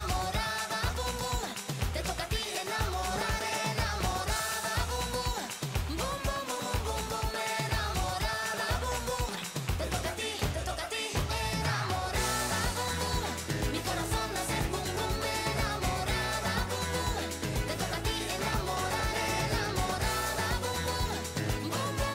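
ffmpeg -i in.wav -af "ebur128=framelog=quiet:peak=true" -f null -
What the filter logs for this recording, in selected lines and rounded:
Integrated loudness:
  I:         -31.9 LUFS
  Threshold: -41.9 LUFS
Loudness range:
  LRA:         1.5 LU
  Threshold: -51.8 LUFS
  LRA low:   -32.7 LUFS
  LRA high:  -31.1 LUFS
True peak:
  Peak:      -17.6 dBFS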